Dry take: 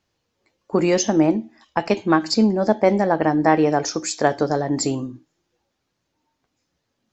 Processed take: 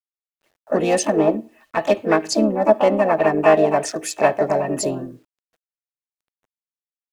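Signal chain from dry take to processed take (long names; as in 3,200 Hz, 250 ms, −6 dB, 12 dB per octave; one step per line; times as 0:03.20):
adaptive Wiener filter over 9 samples
high-shelf EQ 6,100 Hz +4 dB
pitch-shifted copies added +5 semitones −5 dB, +7 semitones −8 dB
hollow resonant body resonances 630/1,800/2,600 Hz, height 12 dB, ringing for 40 ms
bit reduction 10 bits
level −4 dB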